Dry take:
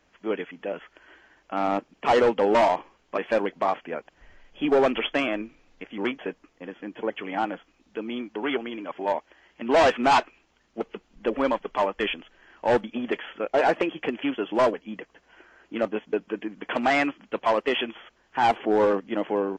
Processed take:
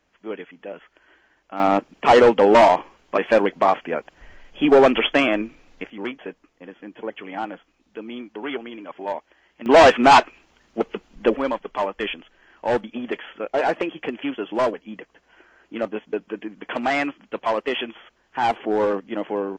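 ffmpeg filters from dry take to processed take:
-af "asetnsamples=n=441:p=0,asendcmd='1.6 volume volume 7dB;5.9 volume volume -2dB;9.66 volume volume 7.5dB;11.36 volume volume 0dB',volume=-3.5dB"

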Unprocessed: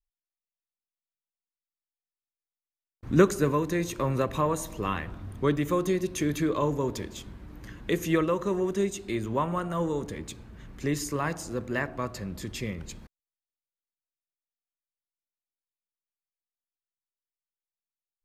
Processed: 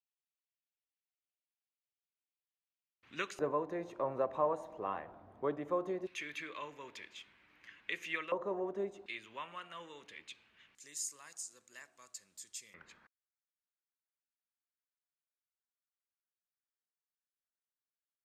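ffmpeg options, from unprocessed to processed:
-af "asetnsamples=n=441:p=0,asendcmd='3.39 bandpass f 710;6.07 bandpass f 2400;8.32 bandpass f 690;9.06 bandpass f 2700;10.75 bandpass f 7700;12.74 bandpass f 1500',bandpass=f=2.7k:t=q:w=2.5:csg=0"

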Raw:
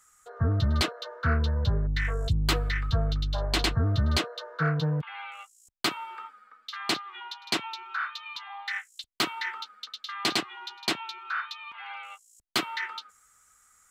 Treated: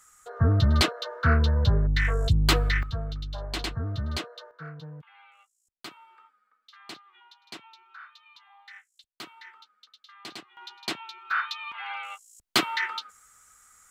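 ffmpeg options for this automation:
-af "asetnsamples=n=441:p=0,asendcmd='2.83 volume volume -6dB;4.51 volume volume -15dB;10.57 volume volume -4dB;11.31 volume volume 4.5dB',volume=4dB"

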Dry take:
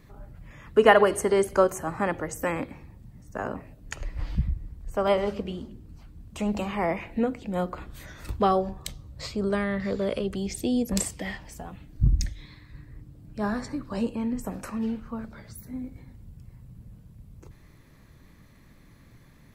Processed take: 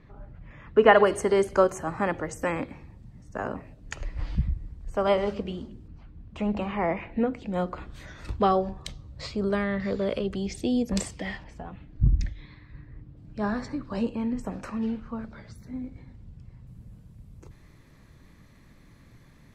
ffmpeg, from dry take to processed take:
-af "asetnsamples=n=441:p=0,asendcmd='0.94 lowpass f 7200;5.88 lowpass f 3000;7.34 lowpass f 6000;11.44 lowpass f 3000;13.17 lowpass f 5400;16.67 lowpass f 11000',lowpass=3k"

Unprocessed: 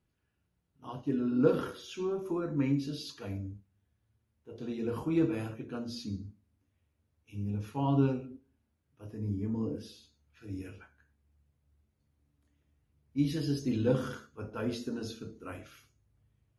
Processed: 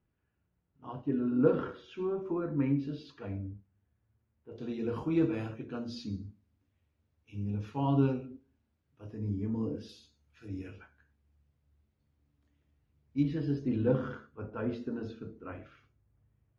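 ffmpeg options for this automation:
-af "asetnsamples=n=441:p=0,asendcmd='4.52 lowpass f 5000;9.89 lowpass f 8500;10.48 lowpass f 4900;13.23 lowpass f 2000',lowpass=2.2k"

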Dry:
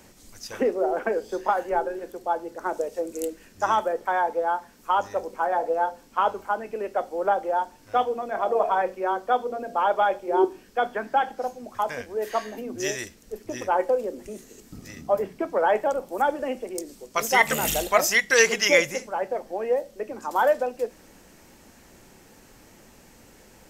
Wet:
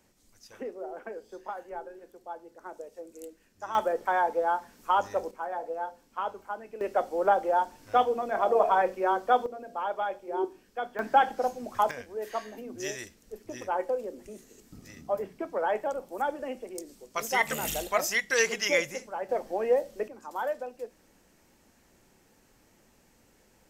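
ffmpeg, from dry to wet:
-af "asetnsamples=n=441:p=0,asendcmd='3.75 volume volume -2dB;5.31 volume volume -10dB;6.81 volume volume -0.5dB;9.46 volume volume -9.5dB;10.99 volume volume 1dB;11.91 volume volume -7dB;19.29 volume volume -0.5dB;20.08 volume volume -11dB',volume=-14.5dB"

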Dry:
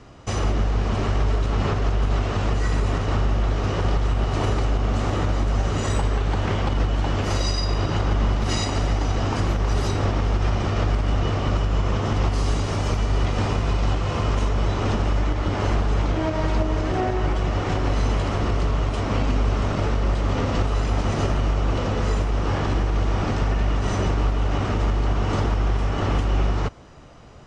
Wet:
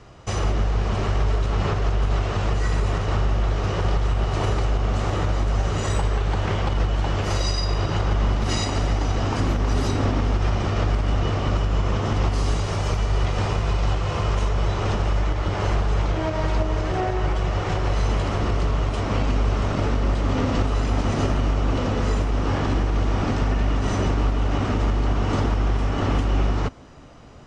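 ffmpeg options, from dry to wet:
-af "asetnsamples=n=441:p=0,asendcmd='8.26 equalizer g -0.5;9.4 equalizer g 7.5;10.31 equalizer g -1.5;12.56 equalizer g -13.5;18.09 equalizer g -2;19.75 equalizer g 5.5',equalizer=f=260:t=o:w=0.28:g=-9"

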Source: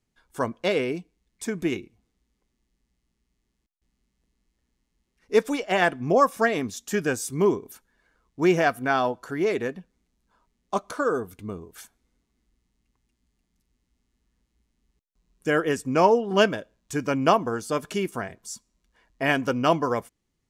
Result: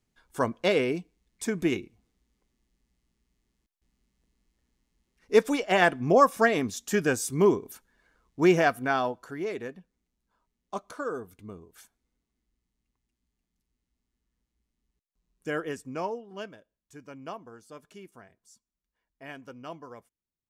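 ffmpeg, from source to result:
-af "afade=t=out:st=8.43:d=1.01:silence=0.375837,afade=t=out:st=15.57:d=0.74:silence=0.266073"

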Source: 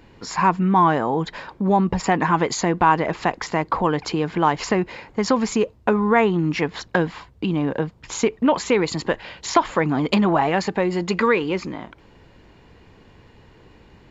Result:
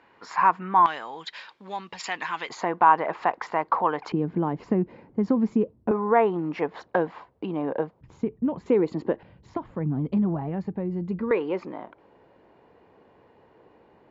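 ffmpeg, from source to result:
-af "asetnsamples=n=441:p=0,asendcmd='0.86 bandpass f 3500;2.49 bandpass f 940;4.12 bandpass f 220;5.91 bandpass f 640;8.01 bandpass f 130;8.66 bandpass f 330;9.23 bandpass f 120;11.31 bandpass f 630',bandpass=f=1.2k:t=q:w=1.1:csg=0"

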